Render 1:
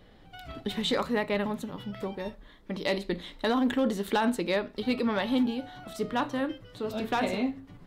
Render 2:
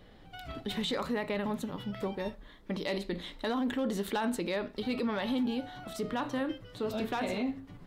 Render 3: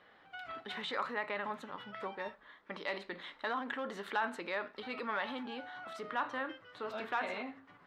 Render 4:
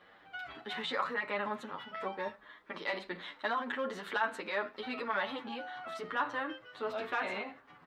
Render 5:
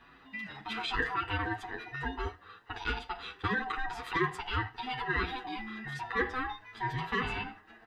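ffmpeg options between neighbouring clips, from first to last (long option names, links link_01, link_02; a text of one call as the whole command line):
ffmpeg -i in.wav -af "alimiter=level_in=0.5dB:limit=-24dB:level=0:latency=1:release=46,volume=-0.5dB" out.wav
ffmpeg -i in.wav -af "bandpass=frequency=1400:width_type=q:width=1.4:csg=0,volume=4dB" out.wav
ffmpeg -i in.wav -filter_complex "[0:a]asplit=2[link_01][link_02];[link_02]adelay=8.7,afreqshift=1[link_03];[link_01][link_03]amix=inputs=2:normalize=1,volume=5.5dB" out.wav
ffmpeg -i in.wav -af "afftfilt=real='real(if(lt(b,1008),b+24*(1-2*mod(floor(b/24),2)),b),0)':imag='imag(if(lt(b,1008),b+24*(1-2*mod(floor(b/24),2)),b),0)':win_size=2048:overlap=0.75,volume=2.5dB" out.wav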